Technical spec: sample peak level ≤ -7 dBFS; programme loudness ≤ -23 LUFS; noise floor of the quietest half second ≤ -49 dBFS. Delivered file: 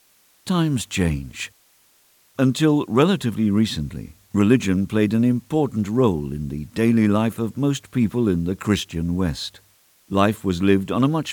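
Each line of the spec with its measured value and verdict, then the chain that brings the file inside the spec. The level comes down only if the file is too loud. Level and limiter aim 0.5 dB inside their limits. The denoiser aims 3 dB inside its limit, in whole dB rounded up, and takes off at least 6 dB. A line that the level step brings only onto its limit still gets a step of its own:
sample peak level -2.5 dBFS: fail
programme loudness -21.0 LUFS: fail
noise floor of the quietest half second -58 dBFS: OK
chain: gain -2.5 dB; limiter -7.5 dBFS

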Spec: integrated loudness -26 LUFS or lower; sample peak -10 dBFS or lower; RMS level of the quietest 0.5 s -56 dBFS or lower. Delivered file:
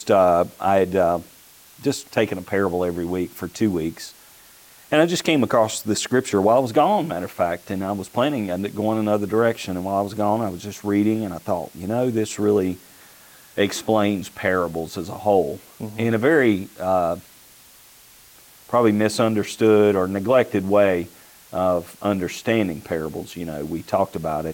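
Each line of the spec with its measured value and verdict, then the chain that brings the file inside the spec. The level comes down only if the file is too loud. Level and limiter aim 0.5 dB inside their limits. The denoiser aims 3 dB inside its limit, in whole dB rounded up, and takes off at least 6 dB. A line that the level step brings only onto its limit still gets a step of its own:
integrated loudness -21.5 LUFS: fail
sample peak -5.5 dBFS: fail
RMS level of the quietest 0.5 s -49 dBFS: fail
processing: denoiser 6 dB, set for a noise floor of -49 dBFS; gain -5 dB

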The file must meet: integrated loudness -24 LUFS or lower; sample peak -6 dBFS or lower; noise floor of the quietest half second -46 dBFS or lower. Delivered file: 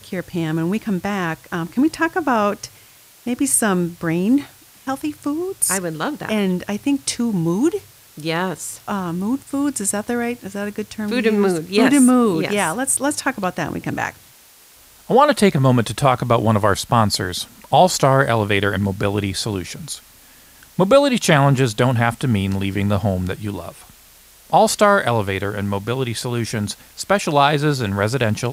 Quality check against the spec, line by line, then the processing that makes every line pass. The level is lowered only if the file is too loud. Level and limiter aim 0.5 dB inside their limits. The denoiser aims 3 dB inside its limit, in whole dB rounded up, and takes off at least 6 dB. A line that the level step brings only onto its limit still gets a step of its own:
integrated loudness -19.0 LUFS: fail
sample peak -2.0 dBFS: fail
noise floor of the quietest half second -48 dBFS: OK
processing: gain -5.5 dB

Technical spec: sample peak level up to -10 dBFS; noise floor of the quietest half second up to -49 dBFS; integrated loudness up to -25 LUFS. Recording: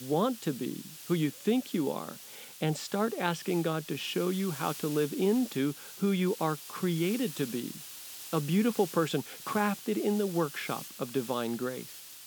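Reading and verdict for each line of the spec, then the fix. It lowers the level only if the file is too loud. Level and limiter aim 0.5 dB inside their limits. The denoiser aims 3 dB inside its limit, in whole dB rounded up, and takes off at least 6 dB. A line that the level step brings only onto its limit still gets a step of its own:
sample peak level -13.0 dBFS: OK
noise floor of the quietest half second -47 dBFS: fail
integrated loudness -31.5 LUFS: OK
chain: denoiser 6 dB, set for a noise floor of -47 dBFS

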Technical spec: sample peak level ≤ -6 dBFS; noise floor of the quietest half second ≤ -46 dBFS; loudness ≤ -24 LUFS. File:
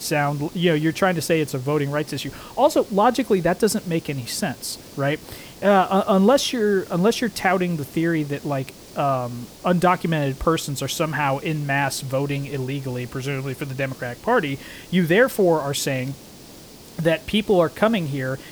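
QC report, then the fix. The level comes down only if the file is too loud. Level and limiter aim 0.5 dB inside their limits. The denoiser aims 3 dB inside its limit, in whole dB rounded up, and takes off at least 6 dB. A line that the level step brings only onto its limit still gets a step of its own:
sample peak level -5.5 dBFS: fail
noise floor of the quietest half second -43 dBFS: fail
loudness -22.0 LUFS: fail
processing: denoiser 6 dB, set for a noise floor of -43 dBFS; gain -2.5 dB

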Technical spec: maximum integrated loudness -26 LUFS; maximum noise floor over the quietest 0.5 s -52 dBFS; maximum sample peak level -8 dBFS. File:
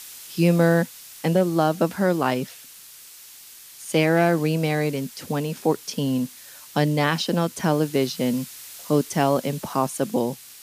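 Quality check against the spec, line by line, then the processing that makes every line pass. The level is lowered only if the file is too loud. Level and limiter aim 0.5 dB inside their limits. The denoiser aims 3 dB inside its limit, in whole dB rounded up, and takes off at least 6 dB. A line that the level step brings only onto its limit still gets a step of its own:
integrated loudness -23.0 LUFS: fail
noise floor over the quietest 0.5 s -45 dBFS: fail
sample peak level -7.0 dBFS: fail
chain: denoiser 7 dB, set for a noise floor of -45 dBFS; gain -3.5 dB

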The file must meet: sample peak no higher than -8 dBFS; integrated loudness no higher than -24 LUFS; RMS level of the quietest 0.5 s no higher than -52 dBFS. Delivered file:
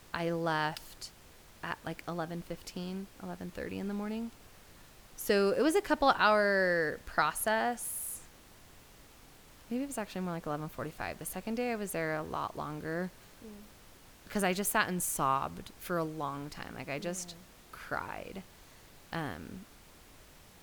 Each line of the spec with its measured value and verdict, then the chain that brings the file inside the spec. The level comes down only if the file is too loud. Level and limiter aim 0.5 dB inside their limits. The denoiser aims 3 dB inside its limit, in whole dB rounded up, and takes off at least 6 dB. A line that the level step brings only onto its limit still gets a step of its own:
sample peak -12.5 dBFS: OK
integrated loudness -33.5 LUFS: OK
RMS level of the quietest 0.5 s -56 dBFS: OK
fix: none

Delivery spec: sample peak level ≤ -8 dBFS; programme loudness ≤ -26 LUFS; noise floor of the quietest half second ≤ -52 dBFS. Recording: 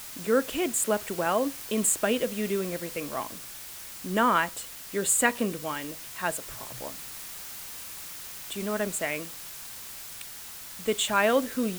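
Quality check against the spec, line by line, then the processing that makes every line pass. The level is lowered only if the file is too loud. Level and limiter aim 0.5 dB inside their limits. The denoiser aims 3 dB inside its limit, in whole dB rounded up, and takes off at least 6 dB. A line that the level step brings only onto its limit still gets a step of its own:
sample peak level -7.5 dBFS: fail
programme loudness -29.0 LUFS: OK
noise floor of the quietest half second -42 dBFS: fail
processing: denoiser 13 dB, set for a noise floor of -42 dBFS; limiter -8.5 dBFS

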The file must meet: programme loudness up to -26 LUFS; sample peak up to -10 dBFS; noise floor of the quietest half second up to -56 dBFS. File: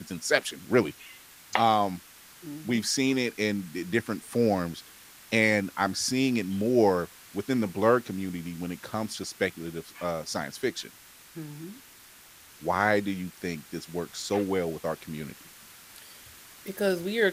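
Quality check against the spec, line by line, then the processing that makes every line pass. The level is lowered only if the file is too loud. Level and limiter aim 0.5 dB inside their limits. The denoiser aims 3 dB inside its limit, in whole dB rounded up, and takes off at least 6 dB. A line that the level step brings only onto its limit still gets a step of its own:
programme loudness -28.0 LUFS: OK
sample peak -5.5 dBFS: fail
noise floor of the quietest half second -52 dBFS: fail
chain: denoiser 7 dB, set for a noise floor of -52 dBFS; limiter -10.5 dBFS

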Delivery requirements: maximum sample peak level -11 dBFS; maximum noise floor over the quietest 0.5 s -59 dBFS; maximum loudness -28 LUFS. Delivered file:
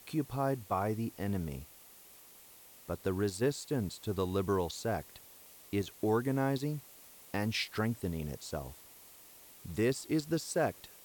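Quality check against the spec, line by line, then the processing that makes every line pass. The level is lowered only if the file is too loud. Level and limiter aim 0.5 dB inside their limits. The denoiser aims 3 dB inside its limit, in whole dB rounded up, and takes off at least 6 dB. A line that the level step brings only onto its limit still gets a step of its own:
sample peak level -20.0 dBFS: OK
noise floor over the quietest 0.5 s -56 dBFS: fail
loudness -35.0 LUFS: OK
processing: denoiser 6 dB, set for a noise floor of -56 dBFS

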